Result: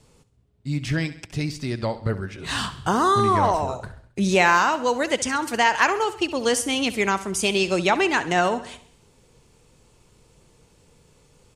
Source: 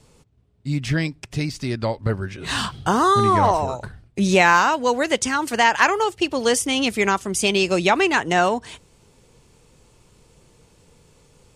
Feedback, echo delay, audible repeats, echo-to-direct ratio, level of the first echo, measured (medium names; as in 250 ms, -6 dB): 51%, 67 ms, 4, -13.5 dB, -15.0 dB